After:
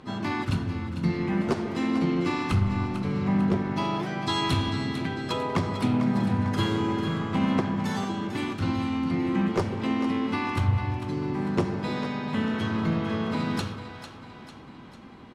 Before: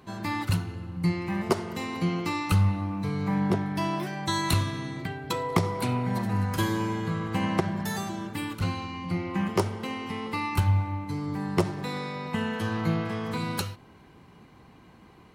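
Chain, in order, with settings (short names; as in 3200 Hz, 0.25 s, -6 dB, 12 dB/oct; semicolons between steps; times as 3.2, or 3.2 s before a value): in parallel at -1 dB: compressor 6:1, threshold -35 dBFS, peak gain reduction 16.5 dB; on the sum: small resonant body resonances 260/3300 Hz, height 9 dB, ringing for 80 ms; soft clip -14 dBFS, distortion -20 dB; harmoniser -3 st -9 dB, +4 st -9 dB; air absorption 63 m; split-band echo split 570 Hz, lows 0.148 s, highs 0.448 s, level -10 dB; on a send at -11.5 dB: reverb RT60 0.80 s, pre-delay 5 ms; on the sum: gain -2.5 dB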